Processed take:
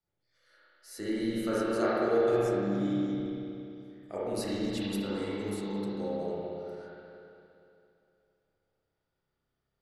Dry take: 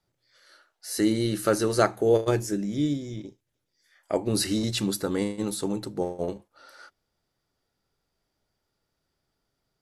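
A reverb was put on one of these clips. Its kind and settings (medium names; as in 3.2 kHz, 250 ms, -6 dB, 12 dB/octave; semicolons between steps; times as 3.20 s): spring tank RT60 2.8 s, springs 30/58 ms, chirp 50 ms, DRR -9.5 dB; trim -14.5 dB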